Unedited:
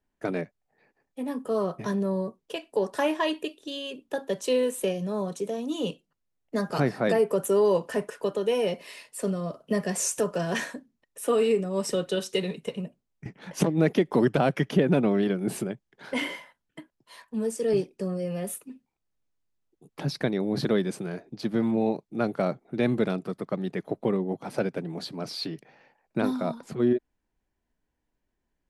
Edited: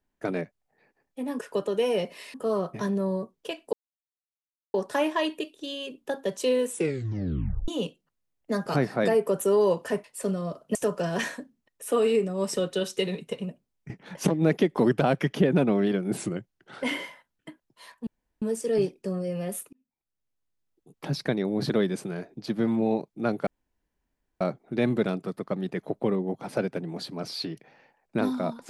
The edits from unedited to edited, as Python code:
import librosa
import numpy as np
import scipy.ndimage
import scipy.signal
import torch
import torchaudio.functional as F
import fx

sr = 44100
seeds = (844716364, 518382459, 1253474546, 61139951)

y = fx.edit(x, sr, fx.insert_silence(at_s=2.78, length_s=1.01),
    fx.tape_stop(start_s=4.73, length_s=0.99),
    fx.move(start_s=8.08, length_s=0.95, to_s=1.39),
    fx.cut(start_s=9.74, length_s=0.37),
    fx.speed_span(start_s=15.53, length_s=0.58, speed=0.91),
    fx.insert_room_tone(at_s=17.37, length_s=0.35),
    fx.fade_in_span(start_s=18.68, length_s=1.36, curve='qsin'),
    fx.insert_room_tone(at_s=22.42, length_s=0.94), tone=tone)